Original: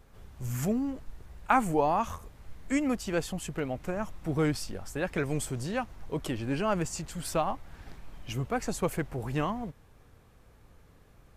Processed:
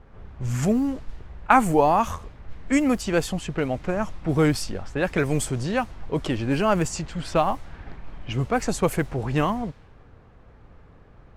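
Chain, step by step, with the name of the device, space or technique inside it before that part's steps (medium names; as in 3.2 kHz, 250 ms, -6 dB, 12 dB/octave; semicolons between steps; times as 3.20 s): cassette deck with a dynamic noise filter (white noise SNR 32 dB; level-controlled noise filter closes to 1.5 kHz, open at -25.5 dBFS); trim +7.5 dB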